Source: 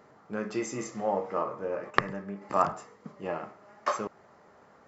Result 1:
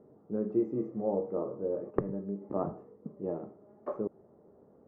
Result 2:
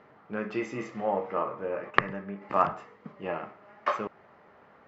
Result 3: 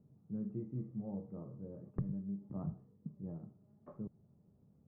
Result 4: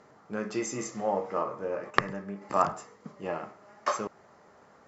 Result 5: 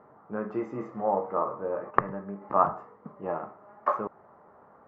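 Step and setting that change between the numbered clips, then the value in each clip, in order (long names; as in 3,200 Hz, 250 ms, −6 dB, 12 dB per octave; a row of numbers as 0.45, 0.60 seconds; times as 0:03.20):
low-pass with resonance, frequency: 400, 2,800, 150, 7,400, 1,100 Hertz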